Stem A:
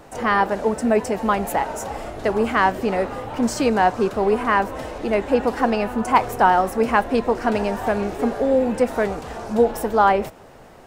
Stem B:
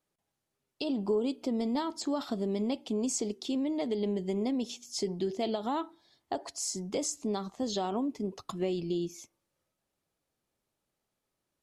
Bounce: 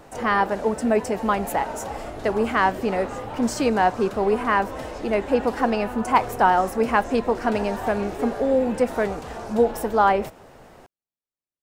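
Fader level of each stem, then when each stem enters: −2.0, −17.5 decibels; 0.00, 0.00 seconds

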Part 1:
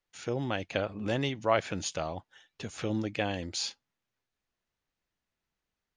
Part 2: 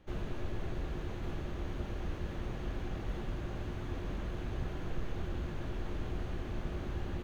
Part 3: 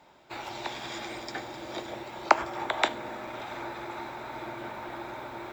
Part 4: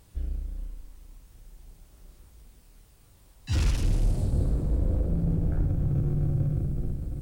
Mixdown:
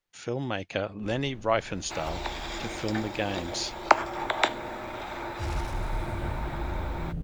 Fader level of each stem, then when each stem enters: +1.0, −11.5, +1.5, −8.0 decibels; 0.00, 0.95, 1.60, 1.90 seconds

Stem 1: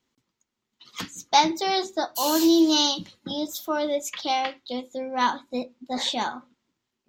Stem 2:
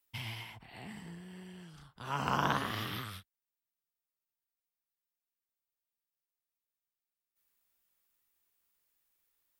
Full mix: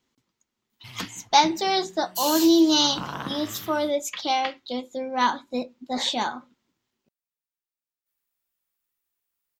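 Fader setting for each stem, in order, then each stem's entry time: +1.0, −3.0 decibels; 0.00, 0.70 seconds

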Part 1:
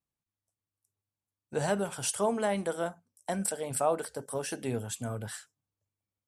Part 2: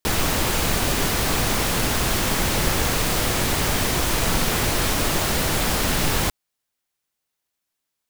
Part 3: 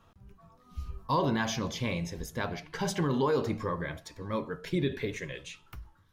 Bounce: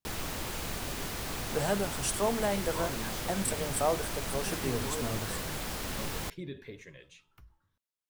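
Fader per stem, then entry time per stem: −1.0, −15.0, −12.0 decibels; 0.00, 0.00, 1.65 seconds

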